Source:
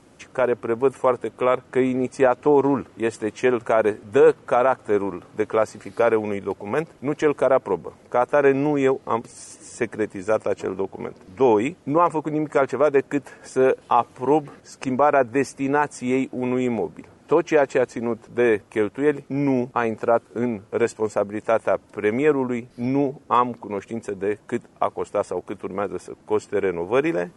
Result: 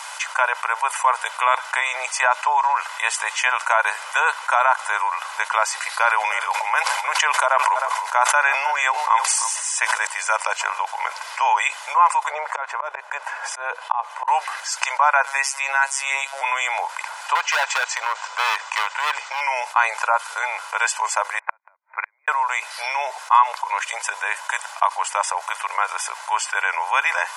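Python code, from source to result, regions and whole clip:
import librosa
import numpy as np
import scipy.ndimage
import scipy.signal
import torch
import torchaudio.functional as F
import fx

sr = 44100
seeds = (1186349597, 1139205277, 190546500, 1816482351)

y = fx.chain(x, sr, fx.echo_single(ms=310, db=-18.5),
    fx.sustainer(db_per_s=64.0), at=(5.99, 10.07))
y = fx.chain(y, sr, fx.tilt_eq(slope=-4.0),
    fx.auto_swell(attack_ms=503.0), at=(12.3, 14.28))
y = fx.chain(y, sr, fx.robotise(hz=137.0),
    fx.band_squash(depth_pct=40), at=(15.26, 16.41))
y = fx.chain(y, sr, fx.steep_lowpass(hz=8000.0, slope=48),
    fx.clip_hard(threshold_db=-19.5), at=(17.35, 19.41))
y = fx.chain(y, sr, fx.brickwall_lowpass(high_hz=2500.0),
    fx.gate_flip(shuts_db=-16.0, range_db=-38),
    fx.upward_expand(threshold_db=-50.0, expansion=2.5), at=(21.39, 22.28))
y = scipy.signal.sosfilt(scipy.signal.butter(8, 780.0, 'highpass', fs=sr, output='sos'), y)
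y = y + 0.46 * np.pad(y, (int(2.0 * sr / 1000.0), 0))[:len(y)]
y = fx.env_flatten(y, sr, amount_pct=50)
y = F.gain(torch.from_numpy(y), 2.5).numpy()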